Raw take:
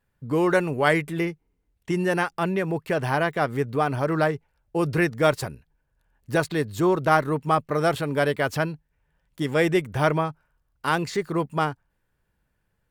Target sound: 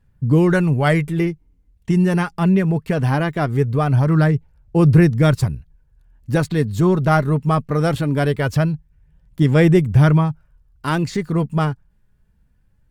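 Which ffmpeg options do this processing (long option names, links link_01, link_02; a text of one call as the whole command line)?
ffmpeg -i in.wav -af "highshelf=frequency=11000:gain=-5.5,aphaser=in_gain=1:out_gain=1:delay=4.9:decay=0.31:speed=0.21:type=sinusoidal,bass=frequency=250:gain=15,treble=frequency=4000:gain=3" out.wav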